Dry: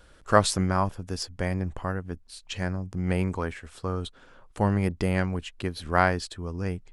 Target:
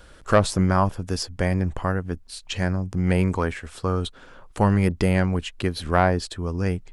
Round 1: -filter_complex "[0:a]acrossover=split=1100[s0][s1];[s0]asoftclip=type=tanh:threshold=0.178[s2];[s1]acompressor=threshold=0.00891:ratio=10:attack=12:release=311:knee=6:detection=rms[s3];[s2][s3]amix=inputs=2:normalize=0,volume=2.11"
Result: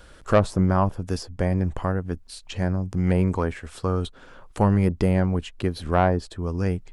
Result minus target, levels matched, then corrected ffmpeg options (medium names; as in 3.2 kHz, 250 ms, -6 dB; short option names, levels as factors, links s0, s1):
compression: peak gain reduction +10 dB
-filter_complex "[0:a]acrossover=split=1100[s0][s1];[s0]asoftclip=type=tanh:threshold=0.178[s2];[s1]acompressor=threshold=0.0316:ratio=10:attack=12:release=311:knee=6:detection=rms[s3];[s2][s3]amix=inputs=2:normalize=0,volume=2.11"